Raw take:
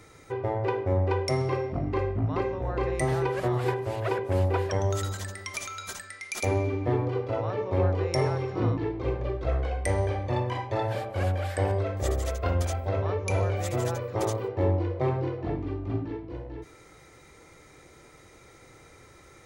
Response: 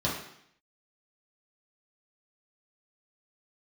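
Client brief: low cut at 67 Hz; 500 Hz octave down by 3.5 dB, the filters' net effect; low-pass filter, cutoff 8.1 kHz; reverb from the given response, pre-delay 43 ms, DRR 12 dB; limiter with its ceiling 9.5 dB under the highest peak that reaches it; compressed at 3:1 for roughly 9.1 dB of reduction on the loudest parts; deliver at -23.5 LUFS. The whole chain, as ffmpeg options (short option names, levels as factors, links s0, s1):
-filter_complex "[0:a]highpass=67,lowpass=8100,equalizer=f=500:t=o:g=-4.5,acompressor=threshold=0.0178:ratio=3,alimiter=level_in=1.68:limit=0.0631:level=0:latency=1,volume=0.596,asplit=2[s0][s1];[1:a]atrim=start_sample=2205,adelay=43[s2];[s1][s2]afir=irnorm=-1:irlink=0,volume=0.0891[s3];[s0][s3]amix=inputs=2:normalize=0,volume=5.01"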